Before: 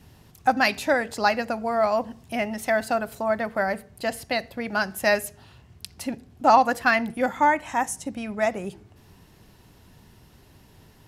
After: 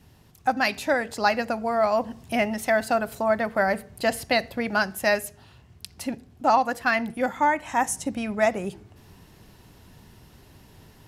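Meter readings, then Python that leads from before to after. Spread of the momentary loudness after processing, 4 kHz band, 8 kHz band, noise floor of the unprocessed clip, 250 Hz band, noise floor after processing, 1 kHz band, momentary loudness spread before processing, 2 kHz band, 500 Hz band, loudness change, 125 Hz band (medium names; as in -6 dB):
10 LU, 0.0 dB, +1.5 dB, -54 dBFS, +0.5 dB, -54 dBFS, -1.5 dB, 12 LU, -0.5 dB, +0.5 dB, -0.5 dB, +1.0 dB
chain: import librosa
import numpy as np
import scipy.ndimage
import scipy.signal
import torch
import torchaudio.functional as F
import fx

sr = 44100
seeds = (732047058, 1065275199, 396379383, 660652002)

y = fx.rider(x, sr, range_db=4, speed_s=0.5)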